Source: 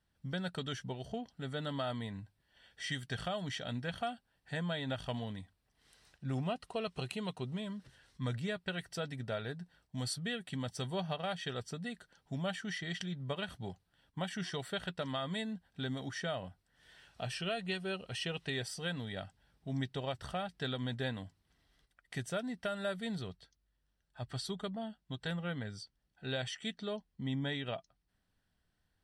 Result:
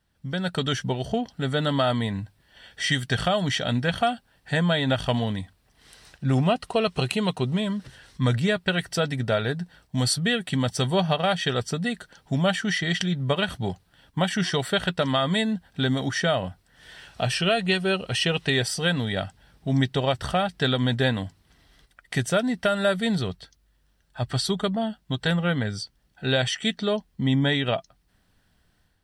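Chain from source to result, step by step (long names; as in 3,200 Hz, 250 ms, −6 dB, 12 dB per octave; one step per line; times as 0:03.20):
automatic gain control gain up to 7 dB
level +7.5 dB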